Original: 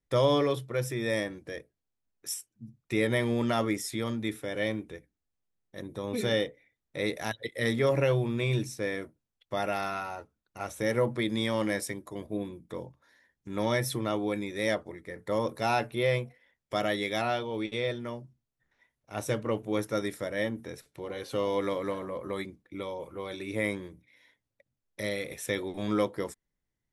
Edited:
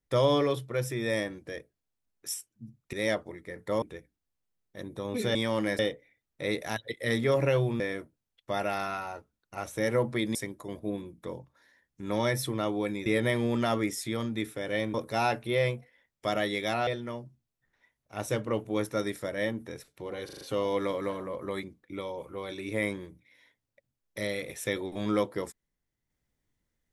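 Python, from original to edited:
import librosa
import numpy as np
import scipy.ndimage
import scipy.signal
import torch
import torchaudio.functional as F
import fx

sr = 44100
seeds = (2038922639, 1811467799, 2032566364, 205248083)

y = fx.edit(x, sr, fx.swap(start_s=2.93, length_s=1.88, other_s=14.53, other_length_s=0.89),
    fx.cut(start_s=8.35, length_s=0.48),
    fx.move(start_s=11.38, length_s=0.44, to_s=6.34),
    fx.cut(start_s=17.35, length_s=0.5),
    fx.stutter(start_s=21.23, slice_s=0.04, count=5), tone=tone)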